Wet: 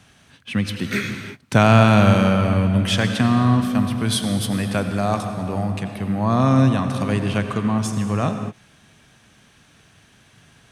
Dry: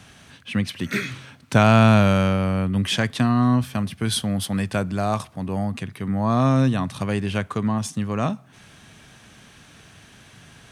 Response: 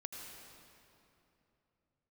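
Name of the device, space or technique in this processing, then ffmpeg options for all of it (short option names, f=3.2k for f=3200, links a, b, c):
keyed gated reverb: -filter_complex "[0:a]asplit=3[a][b][c];[1:a]atrim=start_sample=2205[d];[b][d]afir=irnorm=-1:irlink=0[e];[c]apad=whole_len=472697[f];[e][f]sidechaingate=range=-33dB:threshold=-43dB:ratio=16:detection=peak,volume=5.5dB[g];[a][g]amix=inputs=2:normalize=0,volume=-5dB"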